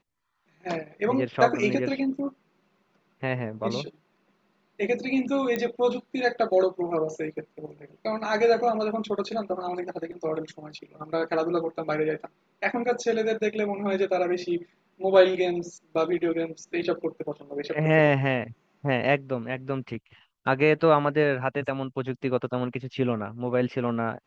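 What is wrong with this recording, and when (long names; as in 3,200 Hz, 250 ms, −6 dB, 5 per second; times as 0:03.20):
0:05.56: click −15 dBFS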